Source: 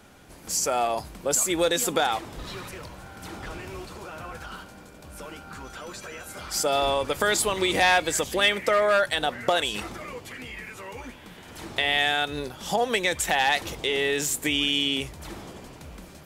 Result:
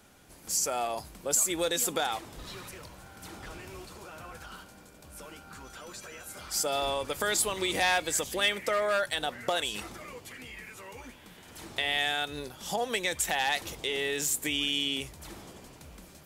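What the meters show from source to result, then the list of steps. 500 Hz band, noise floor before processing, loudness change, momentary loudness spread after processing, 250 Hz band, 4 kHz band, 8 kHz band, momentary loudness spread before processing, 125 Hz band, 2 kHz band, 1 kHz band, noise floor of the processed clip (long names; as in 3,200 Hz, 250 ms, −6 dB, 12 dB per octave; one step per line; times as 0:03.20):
−7.0 dB, −47 dBFS, −5.0 dB, 19 LU, −7.0 dB, −4.5 dB, −2.0 dB, 19 LU, −7.0 dB, −6.0 dB, −7.0 dB, −53 dBFS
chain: high-shelf EQ 4,900 Hz +7 dB
level −7 dB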